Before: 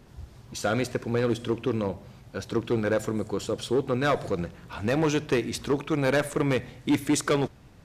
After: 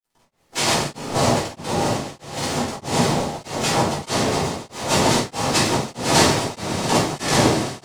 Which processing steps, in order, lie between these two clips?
tilt shelf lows -9 dB; in parallel at -5 dB: sample-and-hold 34×; on the sum: noise-vocoded speech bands 2; crossover distortion -46.5 dBFS; on a send: echo with a slow build-up 137 ms, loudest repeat 8, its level -18 dB; on the sum: simulated room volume 250 m³, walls mixed, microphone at 4.1 m; tremolo of two beating tones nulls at 1.6 Hz; trim -2.5 dB

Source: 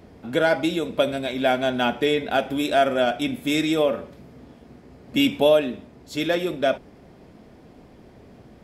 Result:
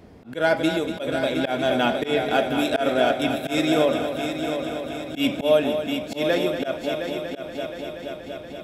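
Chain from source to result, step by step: multi-head delay 238 ms, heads first and third, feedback 69%, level -9.5 dB; slow attack 115 ms

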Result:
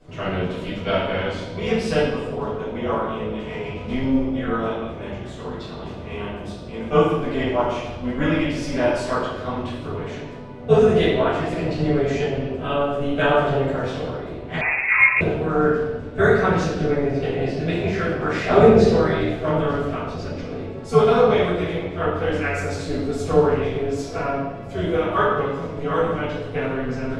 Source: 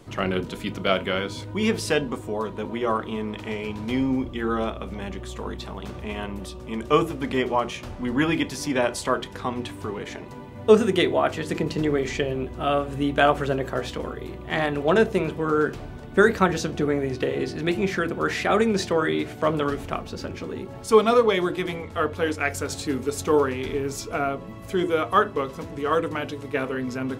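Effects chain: 18.48–18.90 s: peaking EQ 320 Hz +9 dB 2 oct; AM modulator 280 Hz, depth 55%; distance through air 62 m; reverberation RT60 1.3 s, pre-delay 6 ms, DRR -12 dB; 14.61–15.21 s: frequency inversion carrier 2.6 kHz; trim -11.5 dB

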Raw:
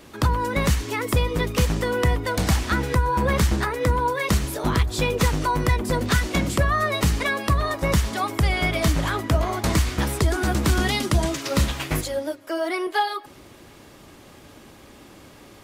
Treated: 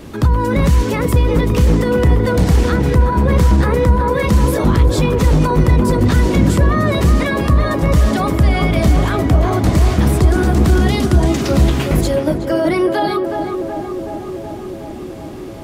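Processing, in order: peak limiter -19.5 dBFS, peak gain reduction 9.5 dB; bass shelf 480 Hz +11 dB; on a send: tape echo 372 ms, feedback 85%, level -4 dB, low-pass 1.3 kHz; on the sum: trim +5.5 dB

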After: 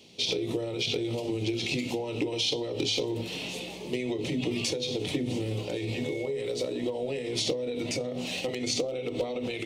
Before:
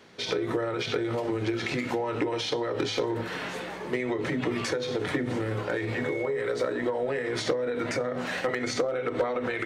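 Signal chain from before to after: FFT filter 260 Hz 0 dB, 780 Hz -6 dB, 1.6 kHz -24 dB, 2.6 kHz +5 dB

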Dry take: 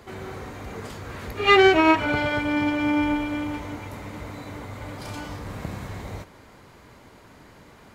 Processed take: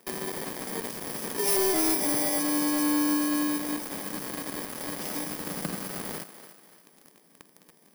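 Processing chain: bit-reversed sample order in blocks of 32 samples; elliptic high-pass 160 Hz, stop band 40 dB; peaking EQ 1.3 kHz +3 dB 0.4 oct; waveshaping leveller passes 5; compression 2:1, threshold -41 dBFS, peak gain reduction 19 dB; on a send: thinning echo 291 ms, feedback 42%, high-pass 300 Hz, level -12 dB

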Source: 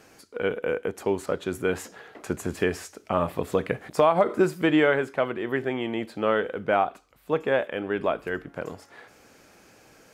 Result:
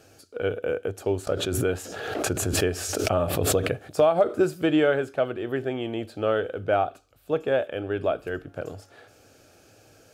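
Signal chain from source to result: graphic EQ with 31 bands 100 Hz +11 dB, 200 Hz -8 dB, 630 Hz +3 dB, 1 kHz -12 dB, 2 kHz -11 dB; 1.27–3.78 s: swell ahead of each attack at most 34 dB/s

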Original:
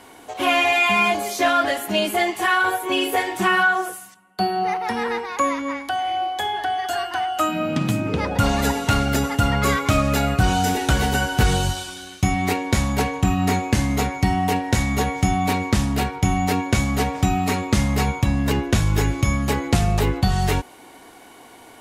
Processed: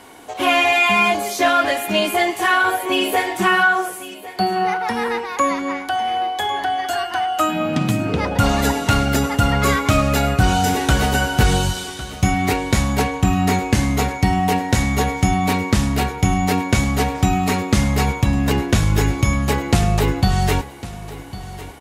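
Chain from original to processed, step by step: feedback delay 1103 ms, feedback 28%, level -16 dB; trim +2.5 dB

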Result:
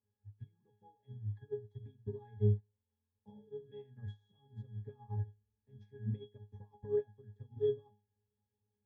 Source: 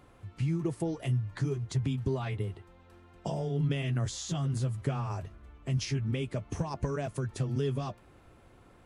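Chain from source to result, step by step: CVSD coder 64 kbps; pitch-class resonator G#, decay 0.42 s; upward expansion 2.5:1, over -54 dBFS; trim +12 dB

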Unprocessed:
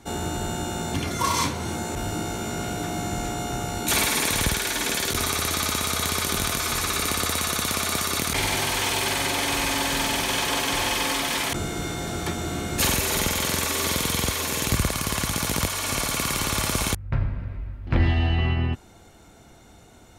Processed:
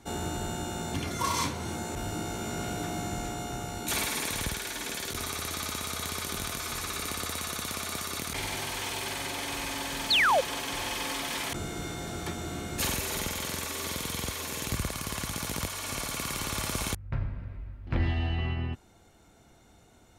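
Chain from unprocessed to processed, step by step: gain riding within 4 dB 2 s; painted sound fall, 10.10–10.41 s, 480–4700 Hz -14 dBFS; trim -8.5 dB

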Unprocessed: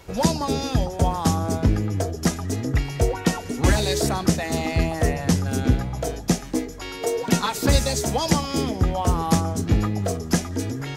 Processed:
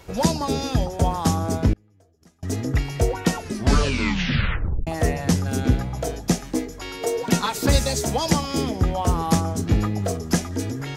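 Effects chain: 1.73–2.43 s: inverted gate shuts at -23 dBFS, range -33 dB; 3.37 s: tape stop 1.50 s

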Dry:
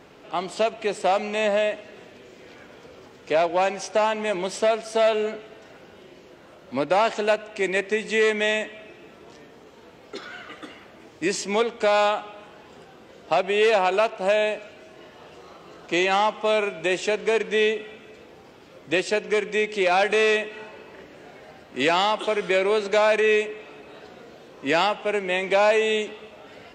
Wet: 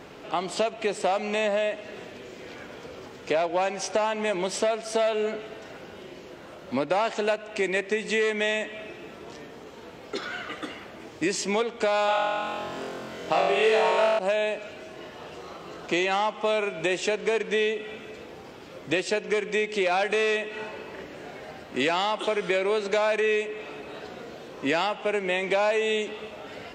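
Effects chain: 12.06–14.19 s: flutter echo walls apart 3.9 m, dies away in 1.2 s; compression 2.5:1, threshold -30 dBFS, peak gain reduction 13.5 dB; trim +4.5 dB

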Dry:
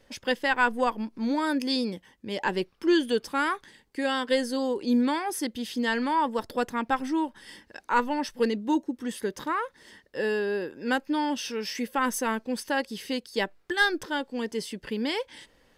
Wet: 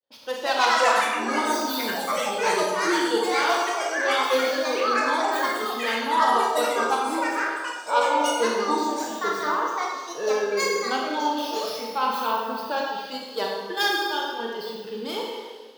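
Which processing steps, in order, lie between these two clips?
tracing distortion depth 0.21 ms; expander -48 dBFS; high-pass 190 Hz 12 dB/octave; Schroeder reverb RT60 2 s, combs from 27 ms, DRR -3 dB; spectral noise reduction 7 dB; graphic EQ 250/500/1000/2000/4000/8000 Hz -8/+3/+4/-8/+9/-11 dB; ever faster or slower copies 255 ms, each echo +5 st, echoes 3; trim -1.5 dB

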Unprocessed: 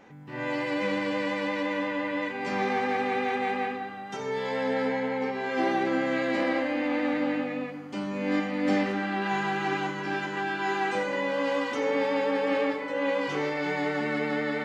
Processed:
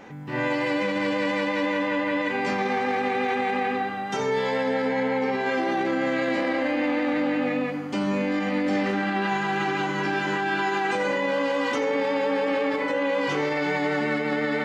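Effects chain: peak limiter -25.5 dBFS, peak gain reduction 10.5 dB; trim +8.5 dB

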